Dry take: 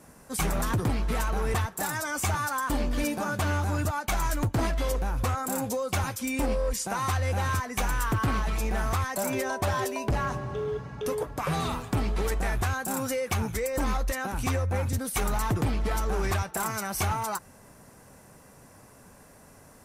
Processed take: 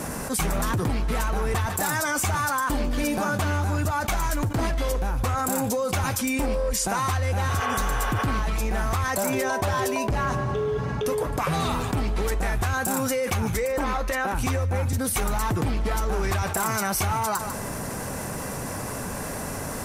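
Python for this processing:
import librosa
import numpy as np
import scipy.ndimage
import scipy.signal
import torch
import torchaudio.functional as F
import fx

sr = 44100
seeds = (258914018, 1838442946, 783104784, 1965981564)

y = fx.spec_repair(x, sr, seeds[0], start_s=7.52, length_s=0.68, low_hz=400.0, high_hz=3600.0, source='after')
y = fx.bass_treble(y, sr, bass_db=-8, treble_db=-8, at=(13.65, 14.35))
y = y + 10.0 ** (-19.5 / 20.0) * np.pad(y, (int(147 * sr / 1000.0), 0))[:len(y)]
y = fx.env_flatten(y, sr, amount_pct=70)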